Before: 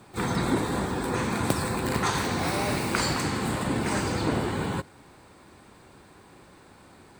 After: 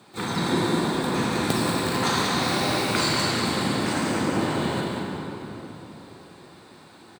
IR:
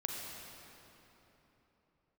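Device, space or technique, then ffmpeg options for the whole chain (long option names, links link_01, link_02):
PA in a hall: -filter_complex "[0:a]asettb=1/sr,asplit=3[link_01][link_02][link_03];[link_01]atrim=end=3.924[link_04];[link_02]atrim=start=3.92:end=4.41,asetpts=PTS-STARTPTS,afade=type=in:duration=0.004:curve=qsin,afade=type=out:start_time=0.486:duration=0.004:curve=qsin,equalizer=frequency=4100:width_type=o:width=0.55:gain=-12.5[link_05];[link_03]atrim=start=4.406[link_06];[link_04][link_05]acrossfade=duration=0.004:curve1=hsin:curve2=qsin[link_07];[link_07][link_06]acrossfade=duration=0.004:curve1=qsin:curve2=hsin,highpass=130,equalizer=frequency=3900:width_type=o:width=0.73:gain=7,aecho=1:1:189:0.473[link_08];[1:a]atrim=start_sample=2205[link_09];[link_08][link_09]afir=irnorm=-1:irlink=0"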